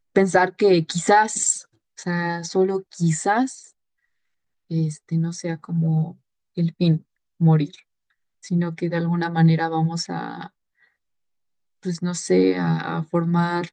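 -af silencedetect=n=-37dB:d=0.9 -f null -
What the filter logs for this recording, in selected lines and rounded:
silence_start: 3.64
silence_end: 4.71 | silence_duration: 1.06
silence_start: 10.47
silence_end: 11.85 | silence_duration: 1.38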